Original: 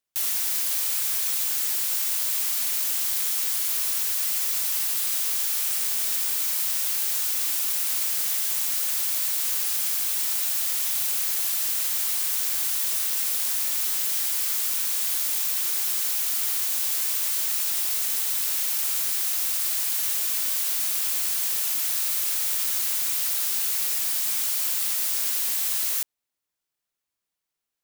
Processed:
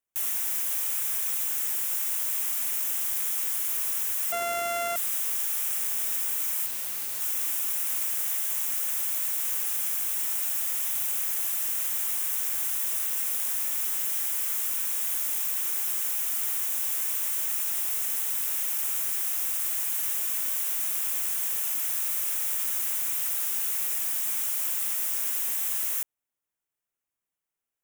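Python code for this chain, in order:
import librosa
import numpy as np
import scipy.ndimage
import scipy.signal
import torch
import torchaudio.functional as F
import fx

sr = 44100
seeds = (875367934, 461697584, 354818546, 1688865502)

y = fx.sample_sort(x, sr, block=64, at=(4.32, 4.96))
y = fx.peak_eq(y, sr, hz=4400.0, db=-13.5, octaves=0.58)
y = fx.clip_hard(y, sr, threshold_db=-27.5, at=(6.66, 7.21))
y = fx.steep_highpass(y, sr, hz=340.0, slope=36, at=(8.06, 8.69))
y = F.gain(torch.from_numpy(y), -2.5).numpy()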